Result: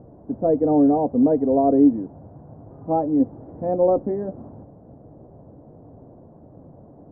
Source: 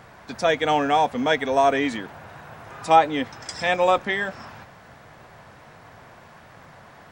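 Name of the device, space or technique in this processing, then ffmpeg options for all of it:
under water: -filter_complex "[0:a]asettb=1/sr,asplit=3[link_01][link_02][link_03];[link_01]atrim=end=1.934[link_04];[link_02]atrim=start=1.93:end=3.2,asetpts=PTS-STARTPTS,afade=type=in:duration=0.004:curve=qsin,afade=type=out:start_time=1.266:duration=0.004:curve=qsin,equalizer=frequency=420:width_type=o:width=1.6:gain=-5[link_05];[link_03]atrim=start=3.196[link_06];[link_04][link_05]acrossfade=duration=0.004:curve1=hsin:curve2=qsin[link_07];[link_07][link_06]acrossfade=duration=0.004:curve1=qsin:curve2=hsin,lowpass=frequency=580:width=0.5412,lowpass=frequency=580:width=1.3066,equalizer=frequency=290:width_type=o:width=0.44:gain=8,volume=4.5dB"

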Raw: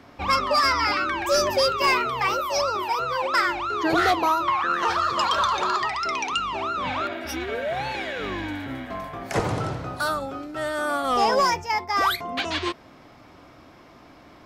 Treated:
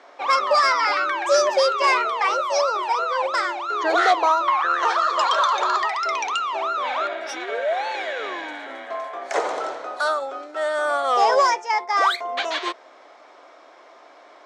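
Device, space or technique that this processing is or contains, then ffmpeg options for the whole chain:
phone speaker on a table: -filter_complex "[0:a]asettb=1/sr,asplit=3[link_01][link_02][link_03];[link_01]atrim=end=3.264[link_04];[link_02]atrim=start=3.26:end=3.69,asetpts=PTS-STARTPTS,afade=type=in:duration=0.004:curve=qsin,afade=type=out:start_time=0.426:duration=0.004:curve=qsin,equalizer=frequency=1700:width=0.84:gain=-5.5[link_05];[link_03]atrim=start=3.686[link_06];[link_04][link_05]acrossfade=duration=0.004:curve1=hsin:curve2=qsin[link_07];[link_07][link_06]acrossfade=duration=0.004:curve1=qsin:curve2=hsin,highpass=frequency=430:width=0.5412,highpass=frequency=430:width=1.3066,equalizer=frequency=640:width_type=q:width=4:gain=3,equalizer=frequency=2700:width_type=q:width=4:gain=-5,equalizer=frequency=4900:width_type=q:width=4:gain=-5,lowpass=frequency=7900:width=0.5412,lowpass=frequency=7900:width=1.3066,volume=3dB"

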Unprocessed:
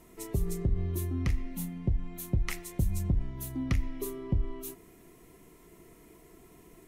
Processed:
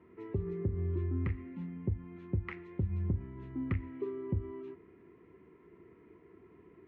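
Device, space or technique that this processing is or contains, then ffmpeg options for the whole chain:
bass cabinet: -af "highpass=frequency=71:width=0.5412,highpass=frequency=71:width=1.3066,equalizer=frequency=92:width_type=q:width=4:gain=4,equalizer=frequency=140:width_type=q:width=4:gain=-4,equalizer=frequency=390:width_type=q:width=4:gain=5,equalizer=frequency=680:width_type=q:width=4:gain=-10,lowpass=frequency=2200:width=0.5412,lowpass=frequency=2200:width=1.3066,volume=-3dB"

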